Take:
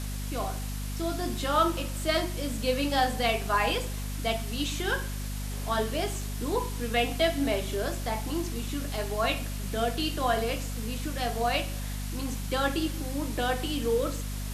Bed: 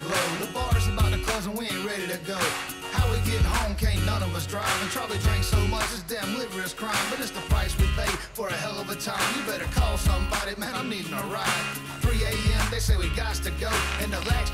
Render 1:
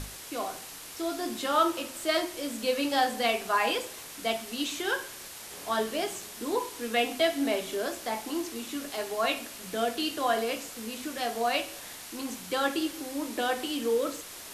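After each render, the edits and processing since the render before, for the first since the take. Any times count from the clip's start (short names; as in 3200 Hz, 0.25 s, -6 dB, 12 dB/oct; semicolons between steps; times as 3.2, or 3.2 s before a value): notches 50/100/150/200/250 Hz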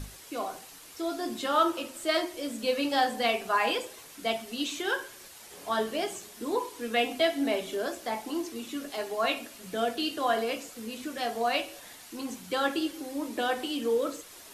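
denoiser 7 dB, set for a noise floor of -44 dBFS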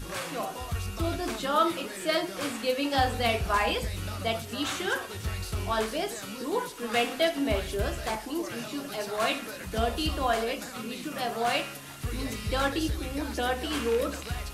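add bed -10 dB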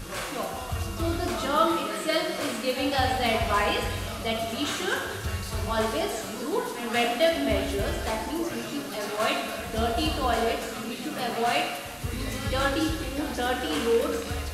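pre-echo 0.191 s -14.5 dB; plate-style reverb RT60 1.4 s, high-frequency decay 0.95×, DRR 2 dB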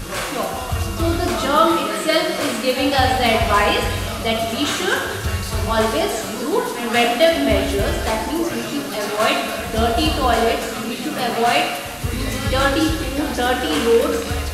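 gain +8.5 dB; limiter -3 dBFS, peak gain reduction 1.5 dB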